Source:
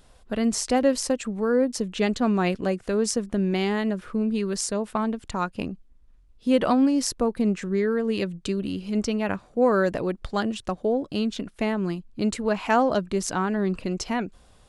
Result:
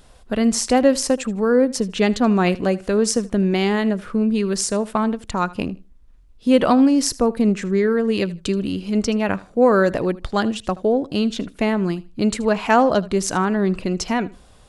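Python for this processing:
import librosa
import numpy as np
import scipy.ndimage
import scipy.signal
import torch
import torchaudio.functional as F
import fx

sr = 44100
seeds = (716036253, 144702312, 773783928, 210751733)

y = fx.echo_feedback(x, sr, ms=78, feedback_pct=20, wet_db=-20.0)
y = y * 10.0 ** (5.5 / 20.0)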